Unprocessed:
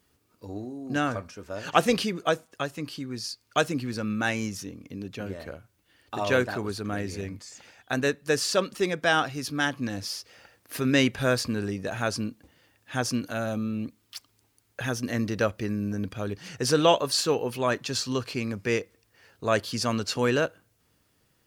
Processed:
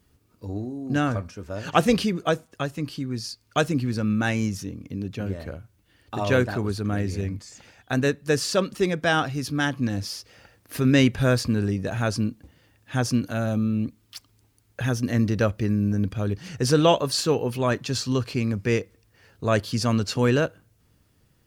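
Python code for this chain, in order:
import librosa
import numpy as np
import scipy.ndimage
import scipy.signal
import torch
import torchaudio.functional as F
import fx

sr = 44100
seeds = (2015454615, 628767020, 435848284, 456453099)

y = fx.low_shelf(x, sr, hz=220.0, db=11.5)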